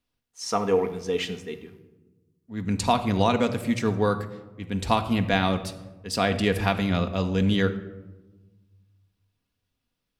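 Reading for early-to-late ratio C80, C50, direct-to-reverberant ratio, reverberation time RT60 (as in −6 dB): 14.5 dB, 12.0 dB, 6.0 dB, 1.2 s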